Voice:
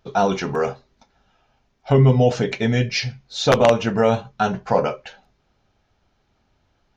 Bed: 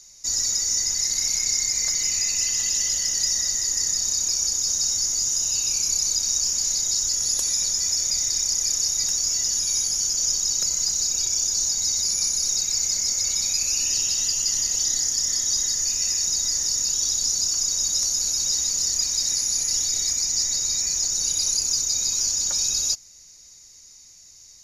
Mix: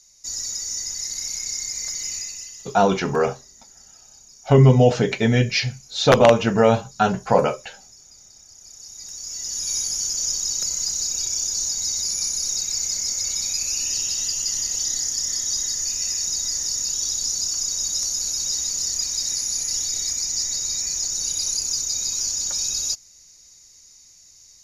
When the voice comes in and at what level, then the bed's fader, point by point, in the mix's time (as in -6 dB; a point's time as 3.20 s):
2.60 s, +1.5 dB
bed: 2.15 s -5.5 dB
2.88 s -25 dB
8.48 s -25 dB
9.71 s -1.5 dB